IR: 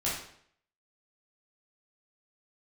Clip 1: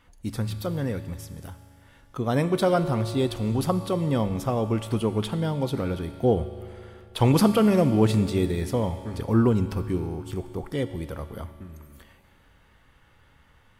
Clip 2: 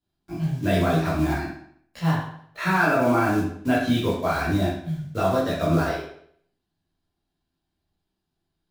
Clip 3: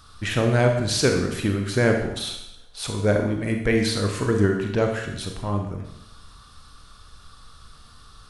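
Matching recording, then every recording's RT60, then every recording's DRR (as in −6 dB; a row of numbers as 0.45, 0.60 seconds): 2; 2.5, 0.65, 0.85 seconds; 9.0, −8.0, 3.0 decibels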